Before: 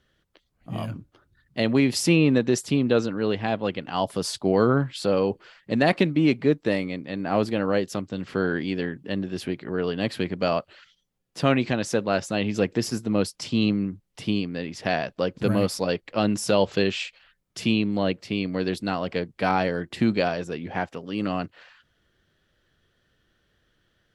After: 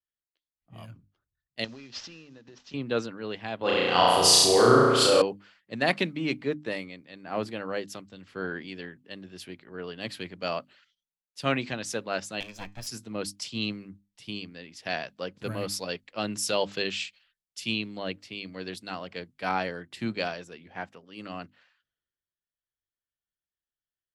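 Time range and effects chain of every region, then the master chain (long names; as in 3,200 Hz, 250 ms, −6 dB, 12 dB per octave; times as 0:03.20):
0:01.64–0:02.74: variable-slope delta modulation 32 kbit/s + downward compressor 16 to 1, threshold −27 dBFS + notch filter 2,200 Hz, Q 14
0:03.61–0:05.22: parametric band 200 Hz −9.5 dB 0.31 octaves + flutter between parallel walls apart 5.8 metres, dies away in 1.5 s + envelope flattener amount 50%
0:12.40–0:12.87: lower of the sound and its delayed copy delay 1.2 ms + tuned comb filter 150 Hz, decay 0.31 s, mix 40%
whole clip: tilt shelving filter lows −4.5 dB, about 1,100 Hz; mains-hum notches 50/100/150/200/250/300 Hz; multiband upward and downward expander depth 70%; level −6 dB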